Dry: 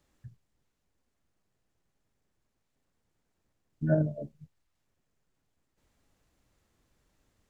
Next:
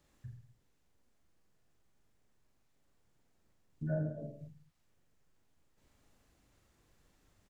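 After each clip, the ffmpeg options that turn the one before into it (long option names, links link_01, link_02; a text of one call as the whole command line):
ffmpeg -i in.wav -filter_complex "[0:a]acompressor=threshold=-44dB:ratio=2,asplit=2[link_01][link_02];[link_02]aecho=0:1:40|84|132.4|185.6|244.2:0.631|0.398|0.251|0.158|0.1[link_03];[link_01][link_03]amix=inputs=2:normalize=0" out.wav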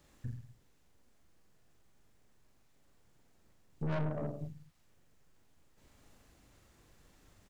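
ffmpeg -i in.wav -af "aeval=exprs='(tanh(141*val(0)+0.7)-tanh(0.7))/141':channel_layout=same,volume=10.5dB" out.wav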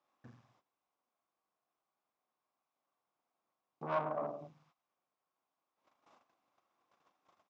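ffmpeg -i in.wav -af "agate=range=-16dB:threshold=-60dB:ratio=16:detection=peak,highpass=400,equalizer=frequency=430:width_type=q:width=4:gain=-5,equalizer=frequency=740:width_type=q:width=4:gain=6,equalizer=frequency=1100:width_type=q:width=4:gain=10,equalizer=frequency=1800:width_type=q:width=4:gain=-7,equalizer=frequency=3000:width_type=q:width=4:gain=-4,equalizer=frequency=4300:width_type=q:width=4:gain=-8,lowpass=frequency=5000:width=0.5412,lowpass=frequency=5000:width=1.3066,volume=2.5dB" out.wav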